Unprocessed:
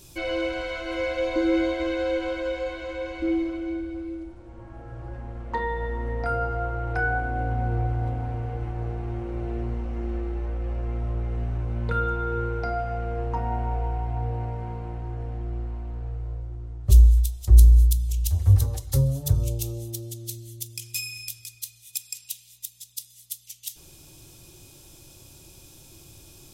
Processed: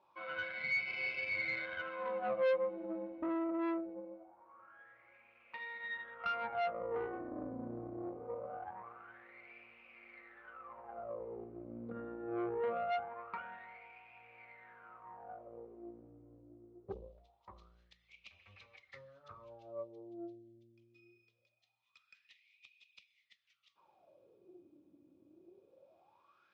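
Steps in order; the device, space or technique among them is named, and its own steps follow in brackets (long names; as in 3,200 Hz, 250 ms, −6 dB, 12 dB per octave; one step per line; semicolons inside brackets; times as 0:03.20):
wah-wah guitar rig (LFO wah 0.23 Hz 280–2,500 Hz, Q 11; tube saturation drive 41 dB, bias 0.75; loudspeaker in its box 89–4,500 Hz, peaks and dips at 140 Hz −5 dB, 200 Hz +8 dB, 280 Hz −3 dB, 550 Hz +7 dB, 1,200 Hz +7 dB, 2,300 Hz +5 dB)
level +7 dB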